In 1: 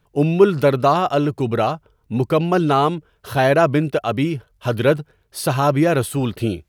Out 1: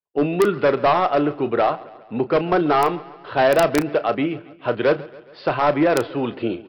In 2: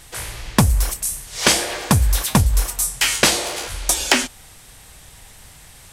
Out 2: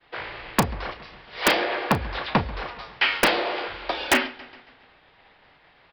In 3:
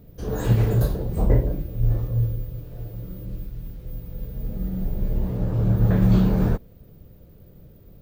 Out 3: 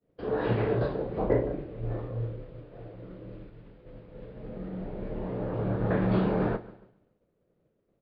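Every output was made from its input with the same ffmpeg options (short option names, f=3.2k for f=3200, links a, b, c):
-filter_complex "[0:a]acrossover=split=260 3100:gain=0.1 1 0.1[a][b][c];[a][b][c]amix=inputs=3:normalize=0,aresample=11025,asoftclip=type=hard:threshold=-13.5dB,aresample=44100,aecho=1:1:138|276|414|552|690:0.1|0.058|0.0336|0.0195|0.0113,agate=range=-33dB:threshold=-46dB:ratio=3:detection=peak,equalizer=f=130:t=o:w=1.3:g=3.5,aeval=exprs='(mod(3.76*val(0)+1,2)-1)/3.76':c=same,asplit=2[d][e];[e]adelay=34,volume=-13dB[f];[d][f]amix=inputs=2:normalize=0,volume=1.5dB"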